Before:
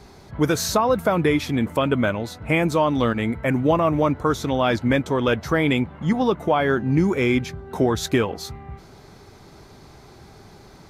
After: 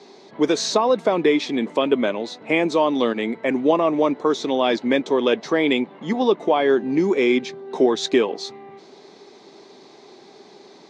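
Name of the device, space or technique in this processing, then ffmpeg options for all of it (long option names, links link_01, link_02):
television speaker: -af "highpass=frequency=230:width=0.5412,highpass=frequency=230:width=1.3066,equalizer=frequency=400:width_type=q:width=4:gain=5,equalizer=frequency=1400:width_type=q:width=4:gain=-9,equalizer=frequency=3800:width_type=q:width=4:gain=5,lowpass=frequency=6800:width=0.5412,lowpass=frequency=6800:width=1.3066,volume=1dB"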